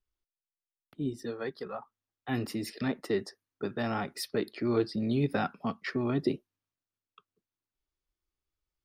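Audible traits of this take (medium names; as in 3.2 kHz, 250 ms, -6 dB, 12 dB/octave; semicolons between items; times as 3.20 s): noise floor -95 dBFS; spectral tilt -5.5 dB/octave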